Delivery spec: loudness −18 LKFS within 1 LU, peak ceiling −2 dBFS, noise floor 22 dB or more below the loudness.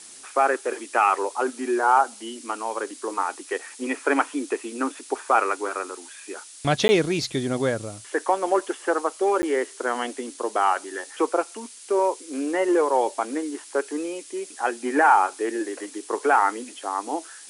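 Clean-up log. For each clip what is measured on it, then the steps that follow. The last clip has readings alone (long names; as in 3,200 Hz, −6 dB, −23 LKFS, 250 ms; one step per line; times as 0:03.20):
number of dropouts 2; longest dropout 10 ms; background noise floor −44 dBFS; target noise floor −47 dBFS; integrated loudness −24.5 LKFS; sample peak −5.5 dBFS; target loudness −18.0 LKFS
→ repair the gap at 0:06.88/0:09.42, 10 ms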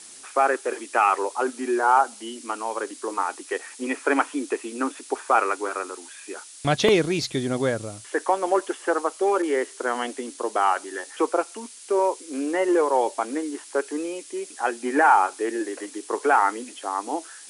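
number of dropouts 0; background noise floor −44 dBFS; target noise floor −47 dBFS
→ noise reduction from a noise print 6 dB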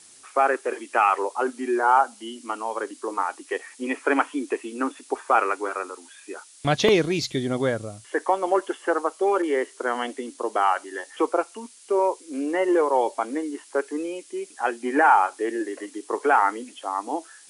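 background noise floor −50 dBFS; integrated loudness −24.5 LKFS; sample peak −5.0 dBFS; target loudness −18.0 LKFS
→ level +6.5 dB
brickwall limiter −2 dBFS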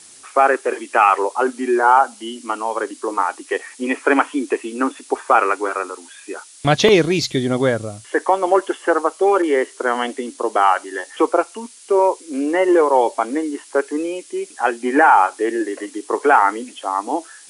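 integrated loudness −18.5 LKFS; sample peak −2.0 dBFS; background noise floor −44 dBFS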